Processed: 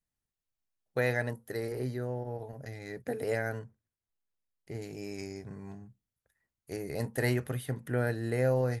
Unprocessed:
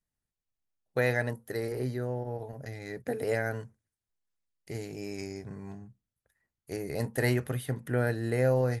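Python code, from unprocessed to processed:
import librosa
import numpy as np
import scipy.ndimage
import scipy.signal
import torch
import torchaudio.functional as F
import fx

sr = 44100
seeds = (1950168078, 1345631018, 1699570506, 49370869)

y = fx.high_shelf(x, sr, hz=2700.0, db=-9.0, at=(3.59, 4.82))
y = y * 10.0 ** (-2.0 / 20.0)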